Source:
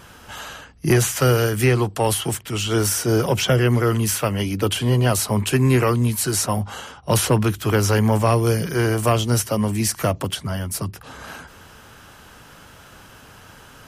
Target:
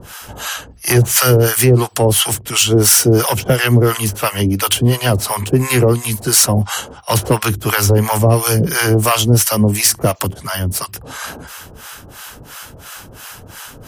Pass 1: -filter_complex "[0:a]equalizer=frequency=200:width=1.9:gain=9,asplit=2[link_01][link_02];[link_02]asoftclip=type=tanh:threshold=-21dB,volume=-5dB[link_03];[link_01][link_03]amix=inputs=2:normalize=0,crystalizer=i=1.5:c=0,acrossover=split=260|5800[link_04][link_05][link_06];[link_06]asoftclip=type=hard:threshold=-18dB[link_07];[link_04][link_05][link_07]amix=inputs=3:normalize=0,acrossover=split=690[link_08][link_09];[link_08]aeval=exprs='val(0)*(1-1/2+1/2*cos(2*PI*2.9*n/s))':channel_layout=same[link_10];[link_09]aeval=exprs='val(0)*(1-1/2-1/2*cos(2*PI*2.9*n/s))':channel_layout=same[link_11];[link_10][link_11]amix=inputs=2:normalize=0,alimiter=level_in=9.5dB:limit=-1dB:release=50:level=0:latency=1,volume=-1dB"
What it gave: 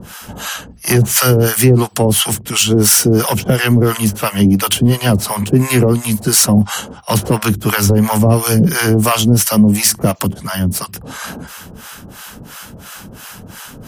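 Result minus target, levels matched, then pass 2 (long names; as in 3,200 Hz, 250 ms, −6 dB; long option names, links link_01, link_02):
250 Hz band +4.0 dB
-filter_complex "[0:a]equalizer=frequency=200:width=1.9:gain=-2,asplit=2[link_01][link_02];[link_02]asoftclip=type=tanh:threshold=-21dB,volume=-5dB[link_03];[link_01][link_03]amix=inputs=2:normalize=0,crystalizer=i=1.5:c=0,acrossover=split=260|5800[link_04][link_05][link_06];[link_06]asoftclip=type=hard:threshold=-18dB[link_07];[link_04][link_05][link_07]amix=inputs=3:normalize=0,acrossover=split=690[link_08][link_09];[link_08]aeval=exprs='val(0)*(1-1/2+1/2*cos(2*PI*2.9*n/s))':channel_layout=same[link_10];[link_09]aeval=exprs='val(0)*(1-1/2-1/2*cos(2*PI*2.9*n/s))':channel_layout=same[link_11];[link_10][link_11]amix=inputs=2:normalize=0,alimiter=level_in=9.5dB:limit=-1dB:release=50:level=0:latency=1,volume=-1dB"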